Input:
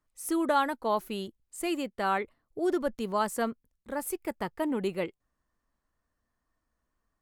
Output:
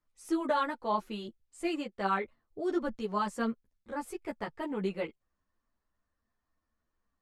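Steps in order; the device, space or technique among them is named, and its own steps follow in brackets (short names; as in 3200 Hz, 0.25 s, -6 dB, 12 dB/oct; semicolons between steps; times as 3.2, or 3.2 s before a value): string-machine ensemble chorus (ensemble effect; LPF 6200 Hz 12 dB/oct)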